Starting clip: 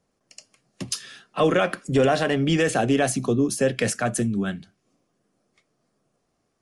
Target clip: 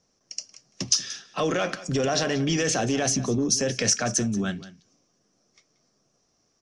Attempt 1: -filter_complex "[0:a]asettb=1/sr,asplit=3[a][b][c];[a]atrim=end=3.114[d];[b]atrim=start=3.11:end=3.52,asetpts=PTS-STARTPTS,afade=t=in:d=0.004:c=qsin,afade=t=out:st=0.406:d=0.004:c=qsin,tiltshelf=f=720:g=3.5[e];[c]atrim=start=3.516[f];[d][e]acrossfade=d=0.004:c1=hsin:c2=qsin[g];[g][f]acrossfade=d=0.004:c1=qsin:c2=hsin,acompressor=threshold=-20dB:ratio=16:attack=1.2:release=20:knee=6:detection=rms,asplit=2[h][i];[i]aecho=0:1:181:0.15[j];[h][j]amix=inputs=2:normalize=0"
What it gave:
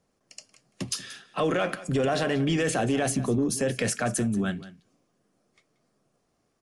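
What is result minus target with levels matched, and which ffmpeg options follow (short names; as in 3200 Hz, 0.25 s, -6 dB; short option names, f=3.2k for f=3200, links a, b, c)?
8000 Hz band -6.0 dB
-filter_complex "[0:a]asettb=1/sr,asplit=3[a][b][c];[a]atrim=end=3.114[d];[b]atrim=start=3.11:end=3.52,asetpts=PTS-STARTPTS,afade=t=in:d=0.004:c=qsin,afade=t=out:st=0.406:d=0.004:c=qsin,tiltshelf=f=720:g=3.5[e];[c]atrim=start=3.516[f];[d][e]acrossfade=d=0.004:c1=hsin:c2=qsin[g];[g][f]acrossfade=d=0.004:c1=qsin:c2=hsin,acompressor=threshold=-20dB:ratio=16:attack=1.2:release=20:knee=6:detection=rms,lowpass=f=5.8k:t=q:w=7.1,asplit=2[h][i];[i]aecho=0:1:181:0.15[j];[h][j]amix=inputs=2:normalize=0"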